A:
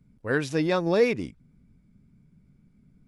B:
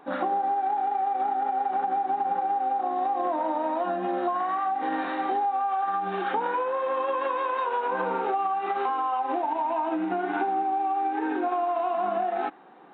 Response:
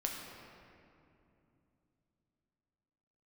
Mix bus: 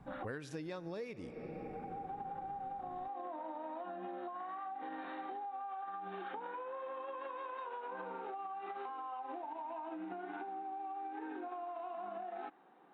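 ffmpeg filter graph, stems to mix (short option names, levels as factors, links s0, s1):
-filter_complex "[0:a]volume=1.06,asplit=3[s0][s1][s2];[s1]volume=0.2[s3];[1:a]volume=0.237[s4];[s2]apad=whole_len=570579[s5];[s4][s5]sidechaincompress=threshold=0.00794:ratio=8:attack=16:release=652[s6];[2:a]atrim=start_sample=2205[s7];[s3][s7]afir=irnorm=-1:irlink=0[s8];[s0][s6][s8]amix=inputs=3:normalize=0,acompressor=threshold=0.01:ratio=16"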